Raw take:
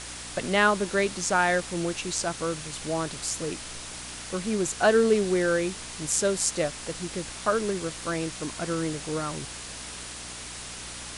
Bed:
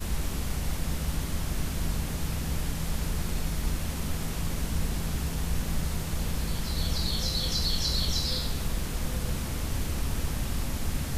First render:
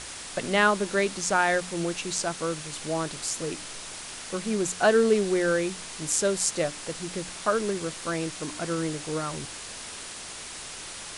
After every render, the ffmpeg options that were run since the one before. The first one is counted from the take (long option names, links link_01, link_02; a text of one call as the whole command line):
ffmpeg -i in.wav -af "bandreject=frequency=60:width_type=h:width=4,bandreject=frequency=120:width_type=h:width=4,bandreject=frequency=180:width_type=h:width=4,bandreject=frequency=240:width_type=h:width=4,bandreject=frequency=300:width_type=h:width=4" out.wav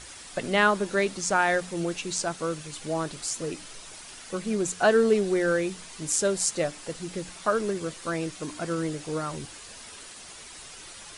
ffmpeg -i in.wav -af "afftdn=noise_reduction=8:noise_floor=-40" out.wav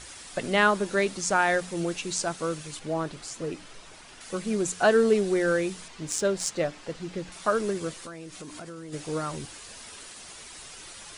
ffmpeg -i in.wav -filter_complex "[0:a]asettb=1/sr,asplit=3[link_01][link_02][link_03];[link_01]atrim=end=2.794[link_04];[link_02]atrim=start=2.79:end=4.21,asetpts=PTS-STARTPTS,afade=type=in:duration=0.004:curve=qsin,afade=type=out:start_time=1.416:duration=0.004:curve=qsin,highshelf=frequency=4900:gain=-12[link_05];[link_03]atrim=start=4.206[link_06];[link_04][link_05]acrossfade=duration=0.004:curve1=hsin:curve2=qsin[link_07];[link_07][link_06]acrossfade=duration=0.004:curve1=qsin:curve2=hsin,asettb=1/sr,asplit=3[link_08][link_09][link_10];[link_08]atrim=end=5.884[link_11];[link_09]atrim=start=5.88:end=7.32,asetpts=PTS-STARTPTS,afade=type=in:duration=0.004:curve=qsin,afade=type=out:start_time=1.436:duration=0.004:curve=qsin,adynamicsmooth=sensitivity=2:basefreq=5000[link_12];[link_10]atrim=start=7.316[link_13];[link_11][link_12]acrossfade=duration=0.004:curve1=hsin:curve2=qsin[link_14];[link_14][link_13]acrossfade=duration=0.004:curve1=qsin:curve2=hsin,asplit=3[link_15][link_16][link_17];[link_15]afade=type=out:start_time=7.98:duration=0.02[link_18];[link_16]acompressor=threshold=-37dB:ratio=8:attack=3.2:release=140:knee=1:detection=peak,afade=type=in:start_time=7.98:duration=0.02,afade=type=out:start_time=8.92:duration=0.02[link_19];[link_17]afade=type=in:start_time=8.92:duration=0.02[link_20];[link_18][link_19][link_20]amix=inputs=3:normalize=0" out.wav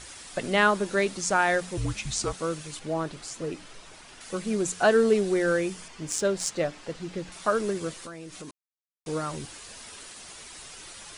ffmpeg -i in.wav -filter_complex "[0:a]asettb=1/sr,asplit=3[link_01][link_02][link_03];[link_01]atrim=end=1.774[link_04];[link_02]atrim=start=1.77:end=2.33,asetpts=PTS-STARTPTS,afade=type=in:duration=0.004:curve=qsin,afade=type=out:start_time=0.556:duration=0.004:curve=qsin,afreqshift=-220[link_05];[link_03]atrim=start=2.326[link_06];[link_04][link_05]acrossfade=duration=0.004:curve1=hsin:curve2=qsin[link_07];[link_07][link_06]acrossfade=duration=0.004:curve1=qsin:curve2=hsin,asettb=1/sr,asplit=3[link_08][link_09][link_10];[link_08]atrim=end=5.594[link_11];[link_09]atrim=start=5.59:end=6.14,asetpts=PTS-STARTPTS,afade=type=in:duration=0.004:curve=qsin,afade=type=out:start_time=0.546:duration=0.004:curve=qsin,bandreject=frequency=3900:width=9[link_12];[link_10]atrim=start=6.136[link_13];[link_11][link_12]acrossfade=duration=0.004:curve1=hsin:curve2=qsin[link_14];[link_14][link_13]acrossfade=duration=0.004:curve1=qsin:curve2=hsin,asplit=3[link_15][link_16][link_17];[link_15]atrim=end=8.51,asetpts=PTS-STARTPTS,afade=type=out:start_time=8.506:duration=0.004:curve=hsin[link_18];[link_16]atrim=start=8.51:end=9.06,asetpts=PTS-STARTPTS,volume=0[link_19];[link_17]atrim=start=9.06,asetpts=PTS-STARTPTS,afade=type=in:duration=0.004:curve=hsin[link_20];[link_18][link_19][link_20]concat=n=3:v=0:a=1" out.wav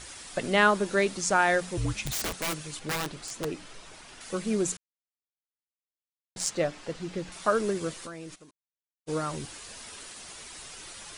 ffmpeg -i in.wav -filter_complex "[0:a]asettb=1/sr,asplit=3[link_01][link_02][link_03];[link_01]atrim=end=2.044[link_04];[link_02]atrim=start=2.04:end=3.45,asetpts=PTS-STARTPTS,afade=type=in:duration=0.004:curve=qsin,afade=type=out:start_time=1.406:duration=0.004:curve=qsin,aeval=exprs='(mod(17.8*val(0)+1,2)-1)/17.8':channel_layout=same[link_05];[link_03]atrim=start=3.446[link_06];[link_04][link_05]acrossfade=duration=0.004:curve1=hsin:curve2=qsin[link_07];[link_07][link_06]acrossfade=duration=0.004:curve1=qsin:curve2=hsin,asplit=3[link_08][link_09][link_10];[link_08]afade=type=out:start_time=8.34:duration=0.02[link_11];[link_09]agate=range=-33dB:threshold=-33dB:ratio=3:release=100:detection=peak,afade=type=in:start_time=8.34:duration=0.02,afade=type=out:start_time=9.15:duration=0.02[link_12];[link_10]afade=type=in:start_time=9.15:duration=0.02[link_13];[link_11][link_12][link_13]amix=inputs=3:normalize=0,asplit=3[link_14][link_15][link_16];[link_14]atrim=end=4.77,asetpts=PTS-STARTPTS,afade=type=out:start_time=4.766:duration=0.004:curve=hsin[link_17];[link_15]atrim=start=4.77:end=6.36,asetpts=PTS-STARTPTS,volume=0[link_18];[link_16]atrim=start=6.36,asetpts=PTS-STARTPTS,afade=type=in:duration=0.004:curve=hsin[link_19];[link_17][link_18][link_19]concat=n=3:v=0:a=1" out.wav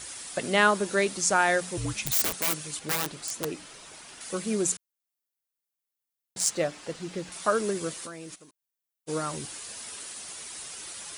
ffmpeg -i in.wav -af "highpass=frequency=110:poles=1,highshelf=frequency=8600:gain=12" out.wav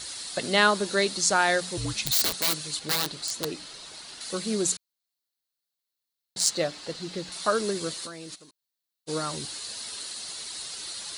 ffmpeg -i in.wav -af "equalizer=frequency=4200:width=2.9:gain=12.5,bandreject=frequency=2400:width=25" out.wav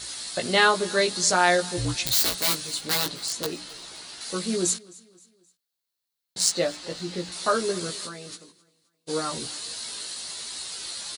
ffmpeg -i in.wav -filter_complex "[0:a]asplit=2[link_01][link_02];[link_02]adelay=17,volume=-3dB[link_03];[link_01][link_03]amix=inputs=2:normalize=0,aecho=1:1:262|524|786:0.0708|0.0304|0.0131" out.wav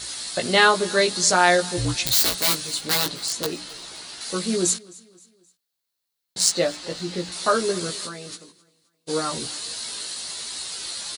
ffmpeg -i in.wav -af "volume=3dB" out.wav